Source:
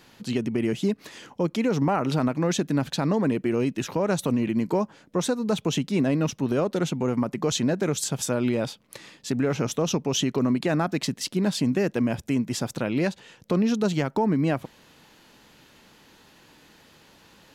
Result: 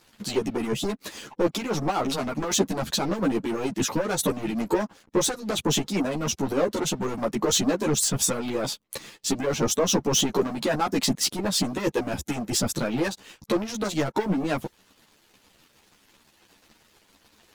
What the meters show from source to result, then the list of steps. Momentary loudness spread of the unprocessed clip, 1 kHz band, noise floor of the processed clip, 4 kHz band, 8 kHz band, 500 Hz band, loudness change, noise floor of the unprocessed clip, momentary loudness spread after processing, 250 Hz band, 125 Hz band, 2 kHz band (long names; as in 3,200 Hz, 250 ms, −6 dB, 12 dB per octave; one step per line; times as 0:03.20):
5 LU, +1.5 dB, −62 dBFS, +5.0 dB, +7.0 dB, 0.0 dB, −0.5 dB, −56 dBFS, 7 LU, −3.0 dB, −4.5 dB, +1.0 dB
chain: high-shelf EQ 4,400 Hz +3.5 dB
leveller curve on the samples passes 3
dynamic equaliser 2,400 Hz, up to −3 dB, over −36 dBFS, Q 0.86
harmonic and percussive parts rebalanced harmonic −13 dB
string-ensemble chorus